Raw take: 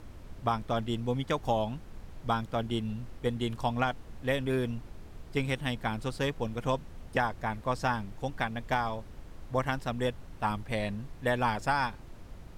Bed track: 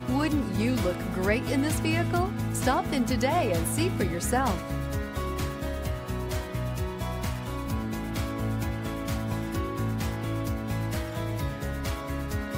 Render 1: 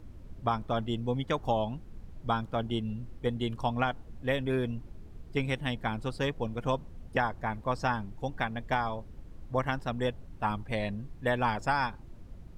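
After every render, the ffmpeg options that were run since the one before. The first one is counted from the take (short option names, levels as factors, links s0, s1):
-af "afftdn=nr=9:nf=-48"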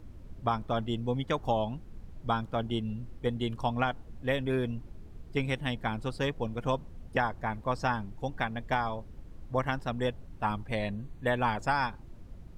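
-filter_complex "[0:a]asettb=1/sr,asplit=3[s0][s1][s2];[s0]atrim=end=10.714[s3];[s1]atrim=start=10.71:end=11.63,asetpts=PTS-STARTPTS,afade=t=in:d=0.004:c=qsin,afade=t=out:st=0.916:d=0.004:c=qsin,asuperstop=centerf=5200:order=4:qfactor=6.4[s4];[s2]atrim=start=11.626[s5];[s3][s4]acrossfade=d=0.004:c1=hsin:c2=qsin[s6];[s6][s5]acrossfade=d=0.004:c1=qsin:c2=hsin"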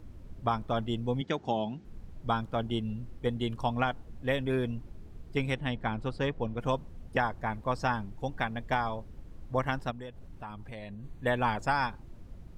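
-filter_complex "[0:a]asettb=1/sr,asplit=3[s0][s1][s2];[s0]atrim=end=1.214[s3];[s1]atrim=start=1.21:end=1.85,asetpts=PTS-STARTPTS,afade=t=in:d=0.004:c=qsin,afade=t=out:st=0.636:d=0.004:c=qsin,highpass=150,equalizer=f=200:t=q:w=4:g=4,equalizer=f=370:t=q:w=4:g=4,equalizer=f=550:t=q:w=4:g=-5,equalizer=f=1100:t=q:w=4:g=-9,lowpass=f=7100:w=0.5412,lowpass=f=7100:w=1.3066[s4];[s2]atrim=start=1.846[s5];[s3][s4]acrossfade=d=0.004:c1=hsin:c2=qsin[s6];[s6][s5]acrossfade=d=0.004:c1=qsin:c2=hsin,asettb=1/sr,asplit=3[s7][s8][s9];[s7]atrim=end=5.544[s10];[s8]atrim=start=5.54:end=6.6,asetpts=PTS-STARTPTS,afade=t=in:d=0.004:c=qsin,afade=t=out:st=1.056:d=0.004:c=qsin,aemphasis=mode=reproduction:type=50fm[s11];[s9]atrim=start=6.596[s12];[s10][s11]acrossfade=d=0.004:c1=hsin:c2=qsin[s13];[s13][s12]acrossfade=d=0.004:c1=qsin:c2=hsin,asplit=3[s14][s15][s16];[s14]afade=t=out:st=9.9:d=0.02[s17];[s15]acompressor=threshold=0.01:ratio=4:attack=3.2:release=140:knee=1:detection=peak,afade=t=in:st=9.9:d=0.02,afade=t=out:st=11.03:d=0.02[s18];[s16]afade=t=in:st=11.03:d=0.02[s19];[s17][s18][s19]amix=inputs=3:normalize=0"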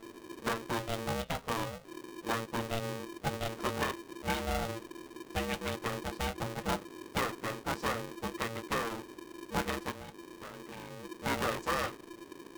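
-af "flanger=delay=8.8:depth=6.9:regen=-58:speed=0.36:shape=sinusoidal,aeval=exprs='val(0)*sgn(sin(2*PI*340*n/s))':c=same"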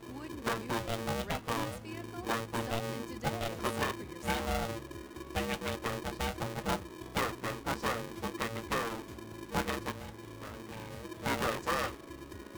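-filter_complex "[1:a]volume=0.106[s0];[0:a][s0]amix=inputs=2:normalize=0"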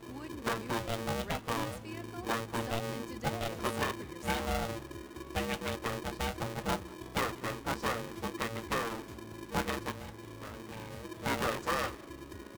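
-af "aecho=1:1:190:0.0668"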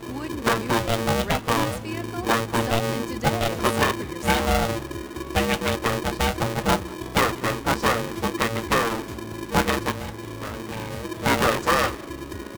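-af "volume=3.98"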